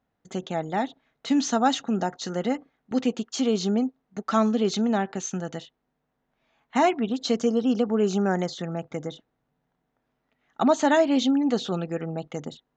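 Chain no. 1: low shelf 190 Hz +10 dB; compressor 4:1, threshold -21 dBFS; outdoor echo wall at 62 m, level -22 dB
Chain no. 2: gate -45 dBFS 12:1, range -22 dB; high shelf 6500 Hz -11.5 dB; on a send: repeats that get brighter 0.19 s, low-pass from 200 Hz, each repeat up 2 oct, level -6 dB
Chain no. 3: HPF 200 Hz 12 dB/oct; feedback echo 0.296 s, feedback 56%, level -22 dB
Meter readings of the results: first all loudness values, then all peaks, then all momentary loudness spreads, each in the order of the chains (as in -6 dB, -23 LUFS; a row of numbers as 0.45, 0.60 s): -27.0, -25.0, -26.0 LUFS; -11.0, -9.0, -7.5 dBFS; 9, 15, 13 LU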